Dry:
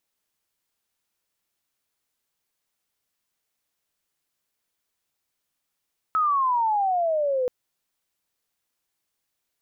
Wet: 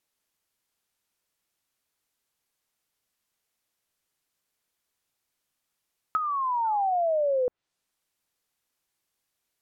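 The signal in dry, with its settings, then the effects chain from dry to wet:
sweep logarithmic 1.3 kHz -> 490 Hz -18.5 dBFS -> -21 dBFS 1.33 s
painted sound fall, 6.64–6.96 s, 650–1500 Hz -42 dBFS; low-pass that closes with the level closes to 860 Hz, closed at -22 dBFS

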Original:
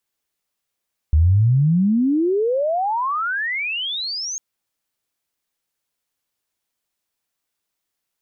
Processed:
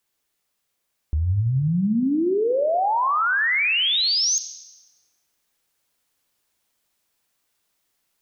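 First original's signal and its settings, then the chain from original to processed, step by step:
sweep logarithmic 73 Hz -> 6.6 kHz -10.5 dBFS -> -24.5 dBFS 3.25 s
in parallel at -2.5 dB: gain riding; on the sum: peak limiter -18 dBFS; Schroeder reverb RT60 1.1 s, combs from 31 ms, DRR 11 dB

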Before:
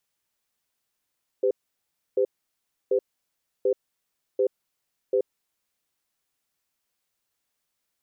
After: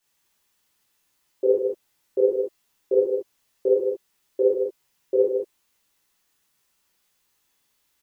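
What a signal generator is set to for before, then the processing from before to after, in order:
cadence 397 Hz, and 508 Hz, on 0.08 s, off 0.66 s, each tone -21.5 dBFS 4.18 s
on a send: delay 155 ms -6 dB; on the sum: gated-style reverb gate 90 ms flat, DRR -8 dB

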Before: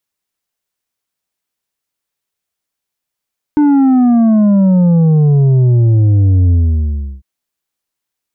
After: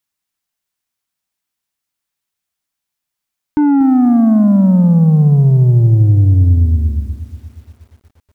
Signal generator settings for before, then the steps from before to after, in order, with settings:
sub drop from 300 Hz, over 3.65 s, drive 6 dB, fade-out 0.71 s, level -7 dB
peaking EQ 470 Hz -7 dB 0.79 oct; bit-crushed delay 239 ms, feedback 55%, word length 7-bit, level -13 dB

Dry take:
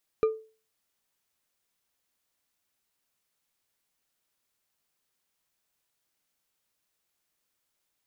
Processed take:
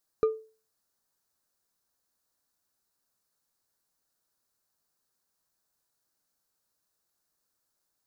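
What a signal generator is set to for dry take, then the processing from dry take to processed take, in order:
glass hit bar, lowest mode 440 Hz, decay 0.36 s, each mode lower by 11.5 dB, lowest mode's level -17 dB
high-order bell 2.6 kHz -10 dB 1 oct

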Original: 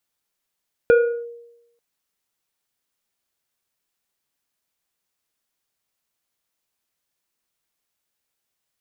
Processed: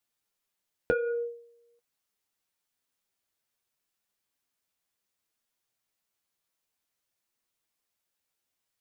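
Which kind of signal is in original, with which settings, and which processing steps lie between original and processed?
FM tone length 0.89 s, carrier 471 Hz, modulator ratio 2.06, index 0.66, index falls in 0.36 s linear, decay 0.91 s, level -8 dB
compression, threshold -19 dBFS; flange 0.54 Hz, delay 8.1 ms, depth 3.7 ms, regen +38%

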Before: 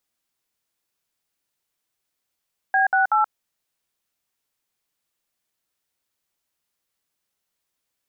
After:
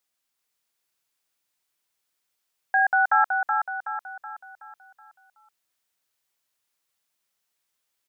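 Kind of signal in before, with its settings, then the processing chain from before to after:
DTMF "B68", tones 128 ms, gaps 60 ms, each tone -18 dBFS
bass shelf 480 Hz -7 dB; on a send: feedback delay 374 ms, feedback 45%, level -4.5 dB

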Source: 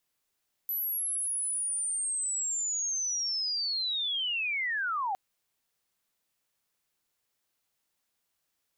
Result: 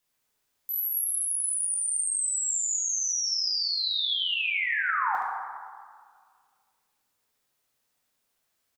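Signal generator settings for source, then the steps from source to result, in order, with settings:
sweep linear 12 kHz -> 740 Hz -29 dBFS -> -28 dBFS 4.46 s
delay 72 ms -6.5 dB; plate-style reverb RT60 1.9 s, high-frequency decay 0.45×, DRR -1.5 dB

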